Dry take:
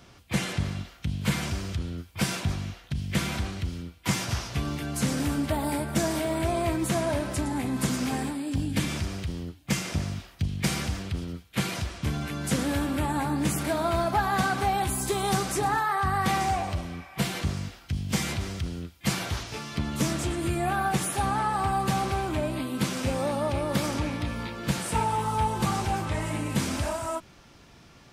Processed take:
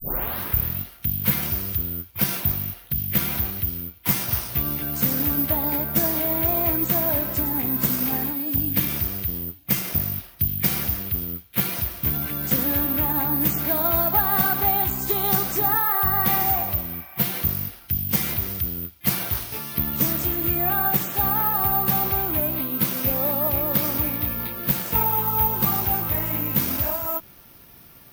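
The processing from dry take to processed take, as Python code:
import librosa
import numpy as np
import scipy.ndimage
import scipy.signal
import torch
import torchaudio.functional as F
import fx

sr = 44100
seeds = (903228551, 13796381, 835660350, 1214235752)

y = fx.tape_start_head(x, sr, length_s=0.81)
y = (np.kron(scipy.signal.resample_poly(y, 1, 3), np.eye(3)[0]) * 3)[:len(y)]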